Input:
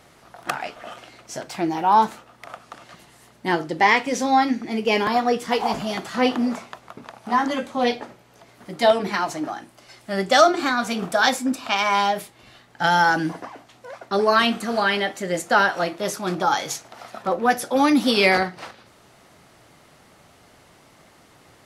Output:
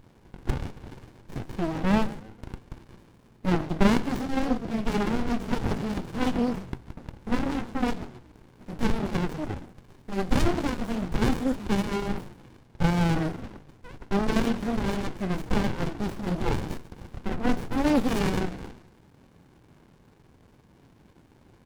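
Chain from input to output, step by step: frequency-shifting echo 138 ms, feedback 43%, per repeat -57 Hz, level -17.5 dB; sliding maximum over 65 samples

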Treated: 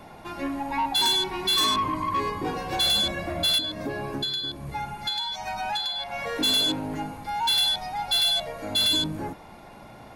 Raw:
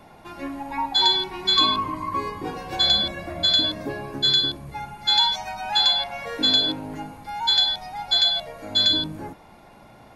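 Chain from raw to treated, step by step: 3.58–6.36 s: compression 20:1, threshold -28 dBFS, peak gain reduction 14.5 dB; saturation -22.5 dBFS, distortion -8 dB; trim +3 dB

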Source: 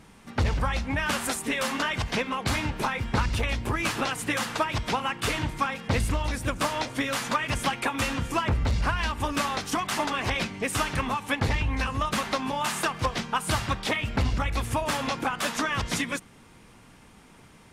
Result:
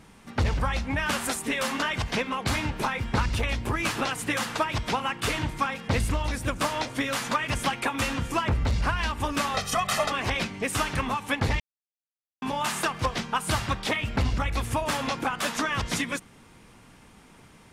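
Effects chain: 9.54–10.12 s: comb 1.6 ms, depth 93%; 11.60–12.42 s: mute

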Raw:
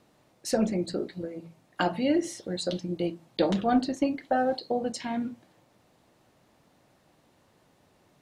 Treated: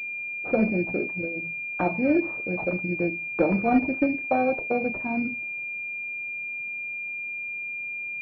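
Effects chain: distance through air 62 m; class-D stage that switches slowly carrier 2.4 kHz; trim +3 dB

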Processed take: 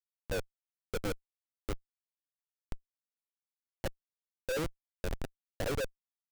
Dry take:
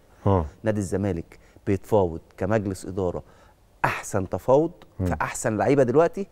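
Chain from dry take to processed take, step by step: LFO high-pass sine 1.7 Hz 250–3200 Hz; cascade formant filter e; Schmitt trigger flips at -27 dBFS; trim -2 dB

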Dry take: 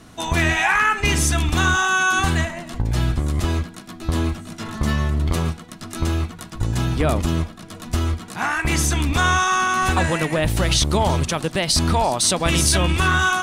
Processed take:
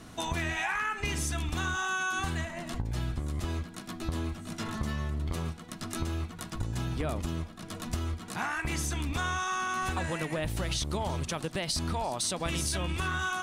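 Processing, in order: compression 3:1, threshold -29 dBFS, peak gain reduction 11.5 dB; trim -3 dB

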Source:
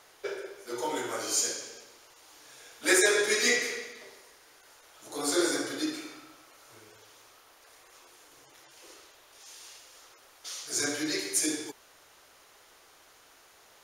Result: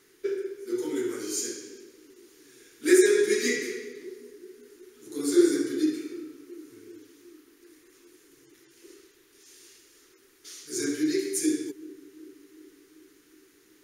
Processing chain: FFT filter 100 Hz 0 dB, 390 Hz +12 dB, 620 Hz -21 dB, 1.8 kHz -1 dB, 3.1 kHz -5 dB, 13 kHz +1 dB; on a send: band-passed feedback delay 376 ms, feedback 63%, band-pass 310 Hz, level -17.5 dB; on the sum: trim -2 dB

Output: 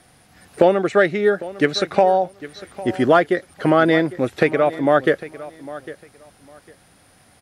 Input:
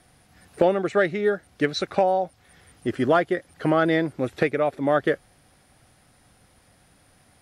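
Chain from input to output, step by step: bass shelf 87 Hz -7.5 dB; on a send: feedback delay 803 ms, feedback 21%, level -17 dB; on the sum: trim +5.5 dB

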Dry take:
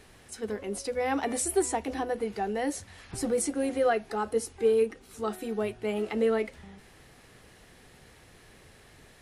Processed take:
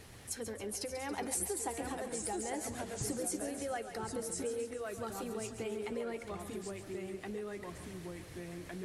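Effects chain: ever faster or slower copies 679 ms, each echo -2 st, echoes 2, each echo -6 dB; compression 2.5:1, threshold -40 dBFS, peak gain reduction 13.5 dB; peaking EQ 100 Hz +13.5 dB 1.6 oct; harmonic-percussive split harmonic -5 dB; tone controls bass -4 dB, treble +4 dB; on a send: thinning echo 144 ms, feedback 58%, level -9.5 dB; on the sum: speed mistake 24 fps film run at 25 fps; trim +1 dB

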